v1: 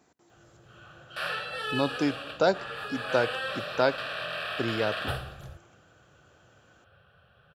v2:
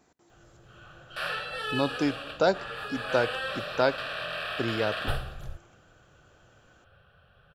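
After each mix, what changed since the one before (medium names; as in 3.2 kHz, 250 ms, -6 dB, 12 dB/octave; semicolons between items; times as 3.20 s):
master: remove high-pass 72 Hz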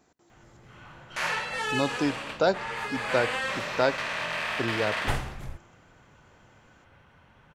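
background: remove static phaser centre 1.4 kHz, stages 8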